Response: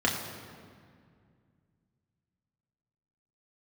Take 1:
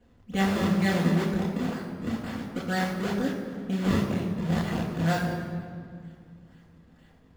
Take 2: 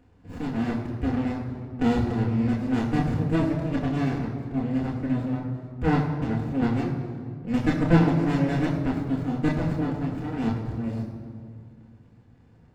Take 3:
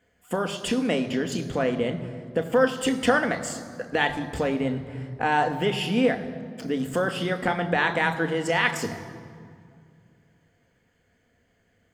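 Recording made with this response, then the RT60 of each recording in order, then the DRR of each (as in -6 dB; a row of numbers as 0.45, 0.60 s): 2; 2.1, 2.1, 2.1 s; -8.0, -3.0, 6.5 dB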